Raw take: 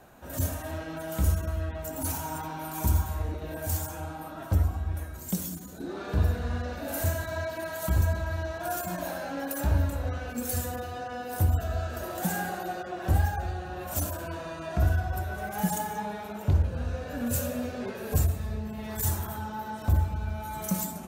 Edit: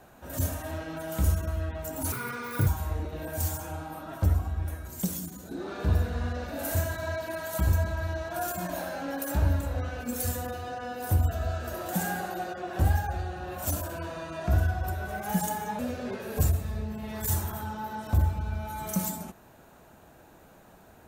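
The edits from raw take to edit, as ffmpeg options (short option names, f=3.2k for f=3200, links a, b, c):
-filter_complex "[0:a]asplit=4[a][b][c][d];[a]atrim=end=2.124[e];[b]atrim=start=2.12:end=2.96,asetpts=PTS-STARTPTS,asetrate=67473,aresample=44100[f];[c]atrim=start=2.956:end=16.082[g];[d]atrim=start=17.538[h];[e][f]acrossfade=d=0.004:c1=hsin:c2=hsin[i];[i][g]acrossfade=d=0.004:c1=hsin:c2=hsin[j];[j][h]acrossfade=d=0.004:c1=hsin:c2=hsin"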